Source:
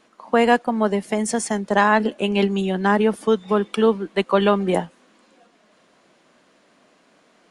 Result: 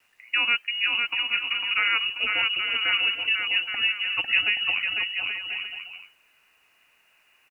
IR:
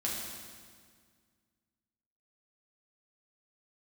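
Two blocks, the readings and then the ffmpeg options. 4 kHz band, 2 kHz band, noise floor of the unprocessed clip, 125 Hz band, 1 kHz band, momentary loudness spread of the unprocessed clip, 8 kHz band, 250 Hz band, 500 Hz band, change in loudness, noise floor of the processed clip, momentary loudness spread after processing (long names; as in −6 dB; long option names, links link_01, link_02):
+11.0 dB, +4.0 dB, −59 dBFS, below −25 dB, −14.0 dB, 6 LU, below −30 dB, −31.5 dB, −29.5 dB, −3.0 dB, −64 dBFS, 7 LU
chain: -af "lowpass=frequency=2600:width_type=q:width=0.5098,lowpass=frequency=2600:width_type=q:width=0.6013,lowpass=frequency=2600:width_type=q:width=0.9,lowpass=frequency=2600:width_type=q:width=2.563,afreqshift=-3100,aecho=1:1:500|825|1036|1174|1263:0.631|0.398|0.251|0.158|0.1,acrusher=bits=9:mix=0:aa=0.000001,volume=-7.5dB"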